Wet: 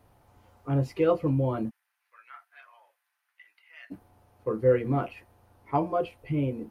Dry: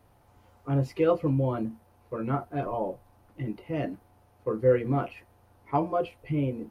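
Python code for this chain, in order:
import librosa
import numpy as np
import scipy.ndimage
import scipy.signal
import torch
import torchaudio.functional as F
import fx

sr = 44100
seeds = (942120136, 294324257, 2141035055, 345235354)

y = fx.ladder_highpass(x, sr, hz=1500.0, resonance_pct=45, at=(1.69, 3.9), fade=0.02)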